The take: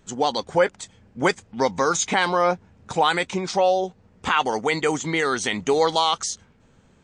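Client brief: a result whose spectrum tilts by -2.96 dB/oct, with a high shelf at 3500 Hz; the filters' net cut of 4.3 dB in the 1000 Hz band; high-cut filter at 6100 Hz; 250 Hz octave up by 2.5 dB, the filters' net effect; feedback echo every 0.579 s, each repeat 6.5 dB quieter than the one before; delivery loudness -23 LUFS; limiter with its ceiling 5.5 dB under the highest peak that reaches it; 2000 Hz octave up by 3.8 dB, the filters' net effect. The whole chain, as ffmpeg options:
-af "lowpass=6.1k,equalizer=f=250:t=o:g=4,equalizer=f=1k:t=o:g=-8,equalizer=f=2k:t=o:g=5.5,highshelf=f=3.5k:g=6.5,alimiter=limit=-9.5dB:level=0:latency=1,aecho=1:1:579|1158|1737|2316|2895|3474:0.473|0.222|0.105|0.0491|0.0231|0.0109,volume=-0.5dB"

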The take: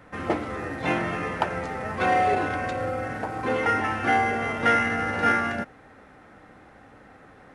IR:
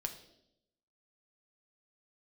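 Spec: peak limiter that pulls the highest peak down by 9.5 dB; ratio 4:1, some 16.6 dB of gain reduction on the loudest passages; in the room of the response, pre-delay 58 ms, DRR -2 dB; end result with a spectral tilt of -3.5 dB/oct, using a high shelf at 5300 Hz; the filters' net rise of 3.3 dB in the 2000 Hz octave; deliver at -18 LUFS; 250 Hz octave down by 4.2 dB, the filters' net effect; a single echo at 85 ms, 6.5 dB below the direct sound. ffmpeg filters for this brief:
-filter_complex "[0:a]equalizer=f=250:t=o:g=-5.5,equalizer=f=2k:t=o:g=5,highshelf=f=5.3k:g=-7.5,acompressor=threshold=-36dB:ratio=4,alimiter=level_in=6.5dB:limit=-24dB:level=0:latency=1,volume=-6.5dB,aecho=1:1:85:0.473,asplit=2[a][b];[1:a]atrim=start_sample=2205,adelay=58[c];[b][c]afir=irnorm=-1:irlink=0,volume=2.5dB[d];[a][d]amix=inputs=2:normalize=0,volume=15.5dB"

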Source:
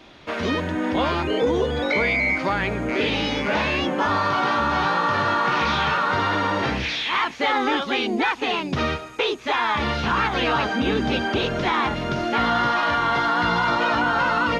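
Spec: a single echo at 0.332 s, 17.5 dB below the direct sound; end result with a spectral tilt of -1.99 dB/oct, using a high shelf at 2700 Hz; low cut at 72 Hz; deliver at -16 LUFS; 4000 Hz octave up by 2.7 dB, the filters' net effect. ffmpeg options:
-af "highpass=72,highshelf=f=2.7k:g=-5.5,equalizer=f=4k:t=o:g=8,aecho=1:1:332:0.133,volume=5.5dB"

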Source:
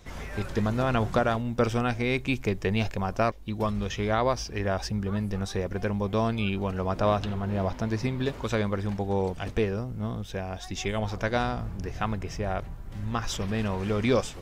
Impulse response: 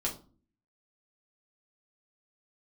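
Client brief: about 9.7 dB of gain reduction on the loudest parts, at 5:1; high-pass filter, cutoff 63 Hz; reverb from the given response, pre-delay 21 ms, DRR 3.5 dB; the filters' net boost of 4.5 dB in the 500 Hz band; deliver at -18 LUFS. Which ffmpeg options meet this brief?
-filter_complex "[0:a]highpass=63,equalizer=f=500:t=o:g=5.5,acompressor=threshold=-26dB:ratio=5,asplit=2[a][b];[1:a]atrim=start_sample=2205,adelay=21[c];[b][c]afir=irnorm=-1:irlink=0,volume=-7.5dB[d];[a][d]amix=inputs=2:normalize=0,volume=11.5dB"

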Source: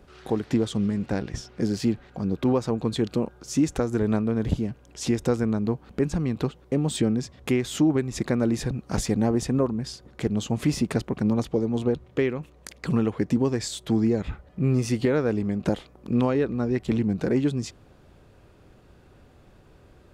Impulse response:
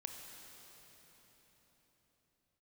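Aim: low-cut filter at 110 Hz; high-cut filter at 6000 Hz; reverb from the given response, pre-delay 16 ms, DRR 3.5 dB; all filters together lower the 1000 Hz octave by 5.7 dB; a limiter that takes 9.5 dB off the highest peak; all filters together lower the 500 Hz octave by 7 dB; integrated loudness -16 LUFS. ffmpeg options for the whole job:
-filter_complex "[0:a]highpass=110,lowpass=6k,equalizer=f=500:t=o:g=-8.5,equalizer=f=1k:t=o:g=-4.5,alimiter=limit=-22dB:level=0:latency=1,asplit=2[a][b];[1:a]atrim=start_sample=2205,adelay=16[c];[b][c]afir=irnorm=-1:irlink=0,volume=-1dB[d];[a][d]amix=inputs=2:normalize=0,volume=15dB"

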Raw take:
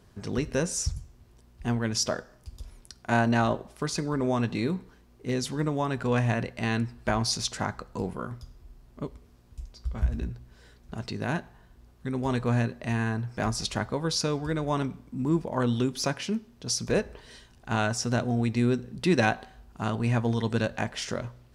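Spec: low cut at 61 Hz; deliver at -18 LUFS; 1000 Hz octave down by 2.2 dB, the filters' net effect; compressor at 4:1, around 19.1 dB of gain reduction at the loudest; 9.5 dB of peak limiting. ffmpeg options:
-af "highpass=61,equalizer=f=1k:t=o:g=-3,acompressor=threshold=-44dB:ratio=4,volume=29dB,alimiter=limit=-6.5dB:level=0:latency=1"

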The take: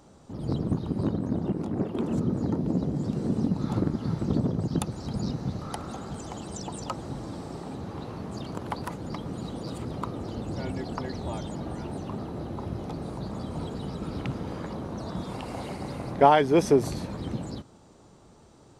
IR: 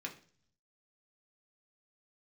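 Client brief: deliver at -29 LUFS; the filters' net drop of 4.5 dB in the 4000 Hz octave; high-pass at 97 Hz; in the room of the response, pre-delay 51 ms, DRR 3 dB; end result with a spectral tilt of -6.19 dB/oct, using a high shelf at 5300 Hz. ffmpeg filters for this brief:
-filter_complex "[0:a]highpass=97,equalizer=f=4k:t=o:g=-8,highshelf=f=5.3k:g=4.5,asplit=2[a][b];[1:a]atrim=start_sample=2205,adelay=51[c];[b][c]afir=irnorm=-1:irlink=0,volume=-2.5dB[d];[a][d]amix=inputs=2:normalize=0"

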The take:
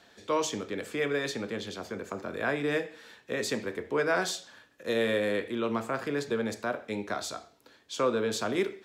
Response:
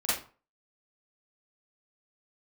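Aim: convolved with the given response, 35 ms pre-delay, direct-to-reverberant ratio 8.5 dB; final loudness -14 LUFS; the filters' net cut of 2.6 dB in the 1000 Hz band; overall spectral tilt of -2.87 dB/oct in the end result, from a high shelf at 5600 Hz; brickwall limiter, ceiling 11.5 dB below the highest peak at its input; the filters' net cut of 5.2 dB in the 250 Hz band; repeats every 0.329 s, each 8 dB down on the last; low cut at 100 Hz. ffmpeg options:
-filter_complex "[0:a]highpass=100,equalizer=f=250:t=o:g=-6.5,equalizer=f=1k:t=o:g=-3.5,highshelf=f=5.6k:g=7.5,alimiter=level_in=4.5dB:limit=-24dB:level=0:latency=1,volume=-4.5dB,aecho=1:1:329|658|987|1316|1645:0.398|0.159|0.0637|0.0255|0.0102,asplit=2[a][b];[1:a]atrim=start_sample=2205,adelay=35[c];[b][c]afir=irnorm=-1:irlink=0,volume=-17.5dB[d];[a][d]amix=inputs=2:normalize=0,volume=23dB"

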